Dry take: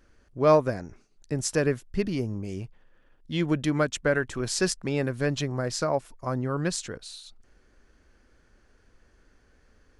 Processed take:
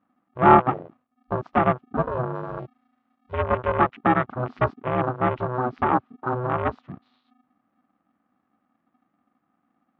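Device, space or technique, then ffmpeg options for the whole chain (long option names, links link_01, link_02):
ring modulator pedal into a guitar cabinet: -filter_complex "[0:a]aeval=exprs='val(0)*sgn(sin(2*PI*250*n/s))':channel_layout=same,highpass=110,equalizer=frequency=450:width_type=q:width=4:gain=-5,equalizer=frequency=800:width_type=q:width=4:gain=3,equalizer=frequency=1200:width_type=q:width=4:gain=10,lowpass=frequency=3600:width=0.5412,lowpass=frequency=3600:width=1.3066,afwtdn=0.0316,lowpass=frequency=1100:poles=1,asettb=1/sr,asplit=3[link_01][link_02][link_03];[link_01]atrim=end=2.354[link_04];[link_02]atrim=start=2.35:end=3.32,asetpts=PTS-STARTPTS,afade=type=in:duration=0.004:curve=qsin,afade=type=out:start_time=0.966:duration=0.004:curve=qsin,aemphasis=mode=production:type=75fm[link_05];[link_03]atrim=start=3.316[link_06];[link_04][link_05]acrossfade=duration=0.004:curve1=hsin:curve2=qsin[link_07];[link_07][link_06]acrossfade=duration=0.004:curve1=qsin:curve2=hsin,volume=5dB"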